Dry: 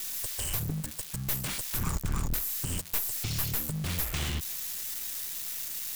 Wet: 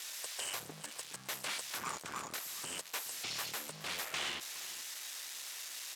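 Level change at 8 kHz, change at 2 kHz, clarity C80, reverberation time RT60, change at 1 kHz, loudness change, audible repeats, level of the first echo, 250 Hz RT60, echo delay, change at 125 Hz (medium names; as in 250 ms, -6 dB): -6.0 dB, -0.5 dB, no reverb, no reverb, -0.5 dB, -8.5 dB, 1, -15.0 dB, no reverb, 418 ms, -25.0 dB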